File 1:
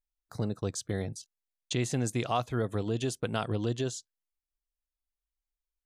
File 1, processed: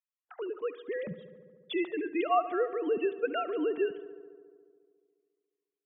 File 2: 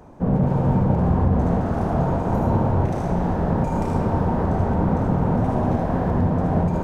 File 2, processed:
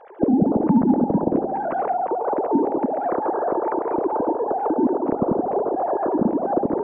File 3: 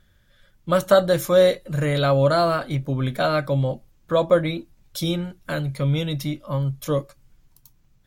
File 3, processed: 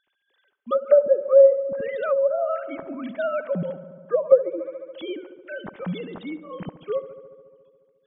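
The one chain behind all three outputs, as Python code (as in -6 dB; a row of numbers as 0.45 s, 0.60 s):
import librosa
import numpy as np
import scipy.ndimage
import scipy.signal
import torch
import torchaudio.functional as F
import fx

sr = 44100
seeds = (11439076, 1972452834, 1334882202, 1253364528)

y = fx.sine_speech(x, sr)
y = fx.echo_filtered(y, sr, ms=71, feedback_pct=80, hz=2800.0, wet_db=-15.0)
y = fx.env_lowpass_down(y, sr, base_hz=630.0, full_db=-16.5)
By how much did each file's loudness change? +0.5 LU, -0.5 LU, 0.0 LU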